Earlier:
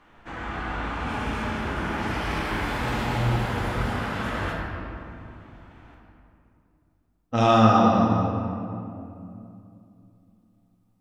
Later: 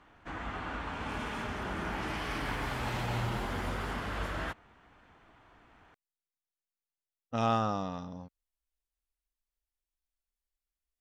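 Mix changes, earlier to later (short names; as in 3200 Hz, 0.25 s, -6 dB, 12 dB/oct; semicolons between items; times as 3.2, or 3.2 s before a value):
speech -4.5 dB; reverb: off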